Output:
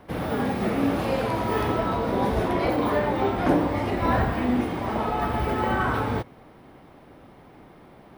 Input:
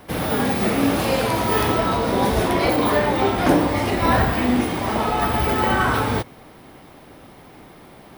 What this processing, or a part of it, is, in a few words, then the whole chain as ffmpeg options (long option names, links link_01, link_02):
through cloth: -af "highshelf=frequency=3500:gain=-13,volume=-4dB"